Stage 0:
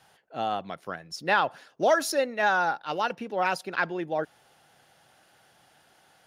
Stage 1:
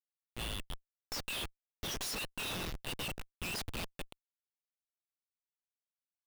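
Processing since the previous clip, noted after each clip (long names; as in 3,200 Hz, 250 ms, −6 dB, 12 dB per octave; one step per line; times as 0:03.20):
Butterworth high-pass 2,600 Hz 96 dB per octave
flanger 0.72 Hz, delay 1.3 ms, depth 9.5 ms, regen +33%
comparator with hysteresis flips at −48 dBFS
level +10 dB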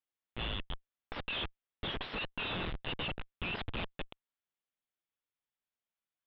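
elliptic low-pass filter 3,500 Hz, stop band 50 dB
level +3.5 dB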